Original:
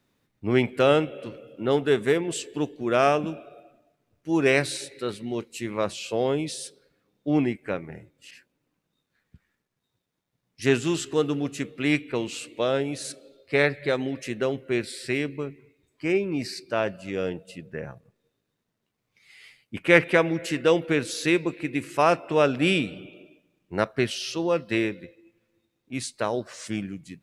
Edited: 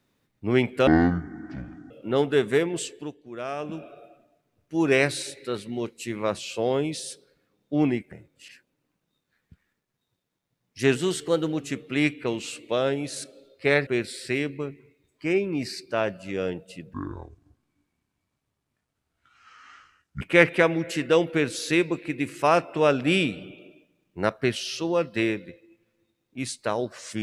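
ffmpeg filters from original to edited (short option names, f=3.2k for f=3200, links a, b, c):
-filter_complex "[0:a]asplit=11[a][b][c][d][e][f][g][h][i][j][k];[a]atrim=end=0.874[l];[b]atrim=start=0.87:end=1.45,asetpts=PTS-STARTPTS,asetrate=24696,aresample=44100[m];[c]atrim=start=1.446:end=2.68,asetpts=PTS-STARTPTS,afade=t=out:st=0.894:d=0.34:silence=0.237137[n];[d]atrim=start=2.68:end=3.1,asetpts=PTS-STARTPTS,volume=-12.5dB[o];[e]atrim=start=3.1:end=7.662,asetpts=PTS-STARTPTS,afade=t=in:d=0.34:silence=0.237137[p];[f]atrim=start=7.938:end=10.784[q];[g]atrim=start=10.78:end=11.49,asetpts=PTS-STARTPTS,asetrate=48069,aresample=44100[r];[h]atrim=start=11.486:end=13.752[s];[i]atrim=start=14.658:end=17.734[t];[j]atrim=start=17.73:end=19.76,asetpts=PTS-STARTPTS,asetrate=27342,aresample=44100[u];[k]atrim=start=19.756[v];[l][m]acrossfade=d=0.004:c1=hsin:c2=hsin[w];[n][o][p]concat=n=3:v=0:a=1[x];[w][x]acrossfade=d=0.004:c1=hsin:c2=hsin[y];[y][q]acrossfade=d=0.004:c1=hsin:c2=hsin[z];[z][r]acrossfade=d=0.004:c1=hsin:c2=hsin[aa];[aa][s]acrossfade=d=0.004:c1=hsin:c2=hsin[ab];[ab][t]acrossfade=d=0.004:c1=hsin:c2=hsin[ac];[ac][u]acrossfade=d=0.004:c1=hsin:c2=hsin[ad];[ad][v]acrossfade=d=0.004:c1=hsin:c2=hsin"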